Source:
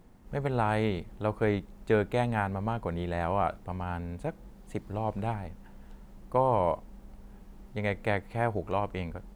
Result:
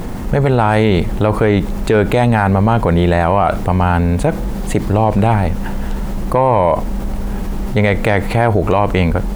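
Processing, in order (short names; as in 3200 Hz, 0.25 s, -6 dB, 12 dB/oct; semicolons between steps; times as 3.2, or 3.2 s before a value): soft clip -14.5 dBFS, distortion -24 dB; maximiser +24.5 dB; fast leveller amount 50%; gain -4.5 dB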